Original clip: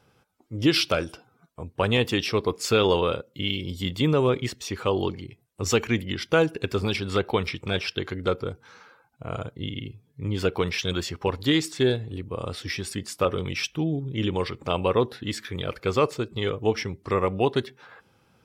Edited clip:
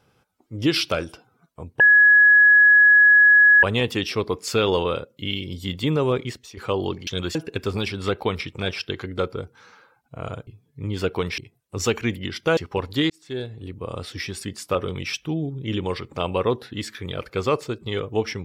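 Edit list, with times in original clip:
1.8 add tone 1680 Hz -9.5 dBFS 1.83 s
4.37–4.74 fade out, to -13.5 dB
5.24–6.43 swap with 10.79–11.07
9.55–9.88 cut
11.6–12.28 fade in

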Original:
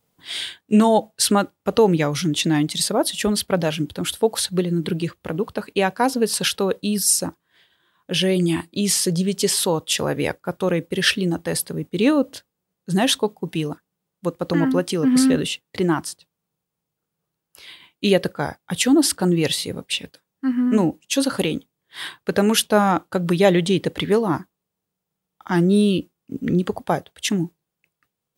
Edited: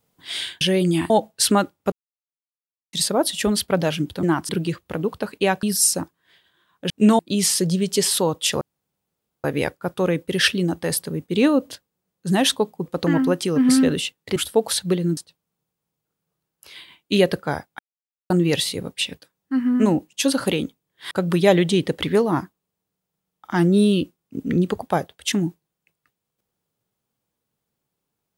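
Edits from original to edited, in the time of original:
0.61–0.9 swap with 8.16–8.65
1.72–2.73 mute
4.03–4.84 swap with 15.83–16.09
5.98–6.89 cut
10.07 insert room tone 0.83 s
13.49–14.33 cut
18.71–19.22 mute
22.03–23.08 cut

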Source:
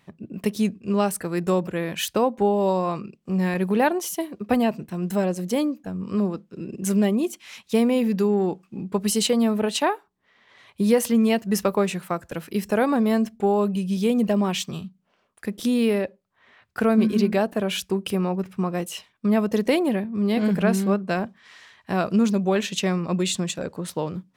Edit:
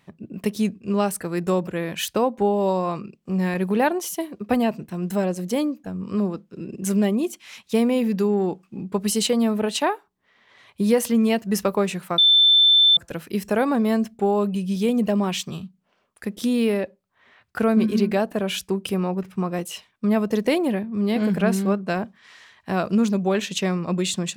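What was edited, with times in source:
12.18 add tone 3540 Hz -11.5 dBFS 0.79 s

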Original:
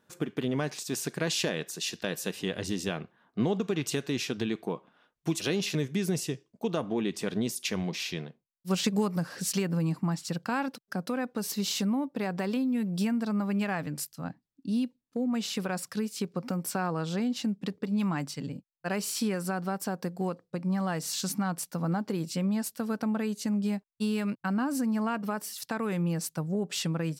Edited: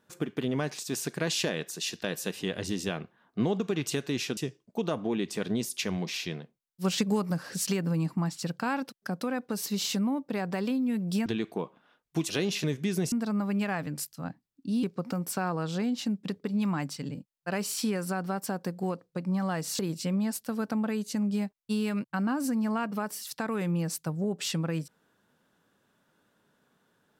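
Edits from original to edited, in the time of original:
4.37–6.23 move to 13.12
14.83–16.21 cut
21.17–22.1 cut

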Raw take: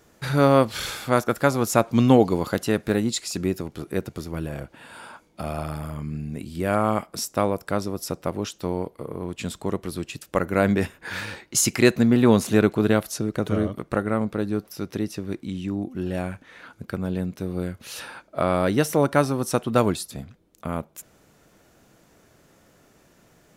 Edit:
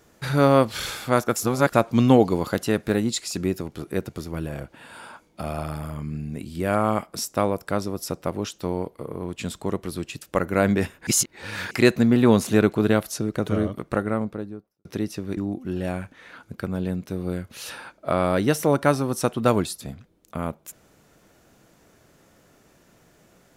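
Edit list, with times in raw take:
1.36–1.74 reverse
11.07–11.71 reverse
13.96–14.85 studio fade out
15.37–15.67 cut

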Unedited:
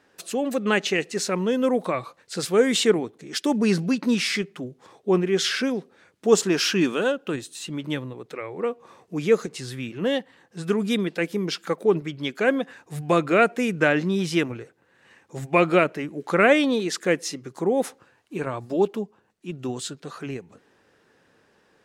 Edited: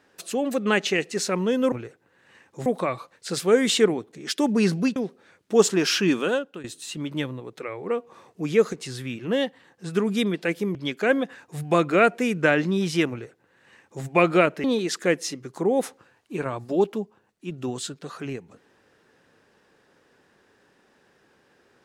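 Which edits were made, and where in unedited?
4.02–5.69 cut
7.01–7.37 fade out, to -15.5 dB
11.48–12.13 cut
14.48–15.42 copy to 1.72
16.02–16.65 cut

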